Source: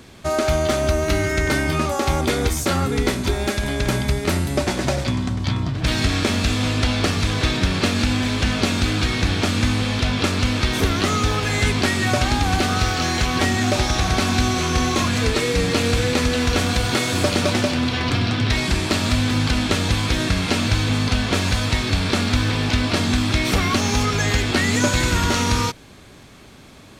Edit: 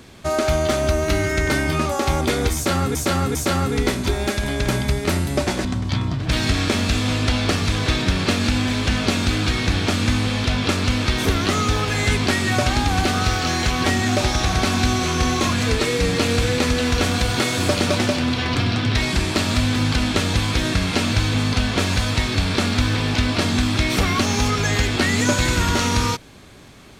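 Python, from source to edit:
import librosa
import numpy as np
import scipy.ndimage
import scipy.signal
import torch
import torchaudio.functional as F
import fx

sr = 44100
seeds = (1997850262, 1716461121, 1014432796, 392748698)

y = fx.edit(x, sr, fx.repeat(start_s=2.55, length_s=0.4, count=3),
    fx.cut(start_s=4.85, length_s=0.35), tone=tone)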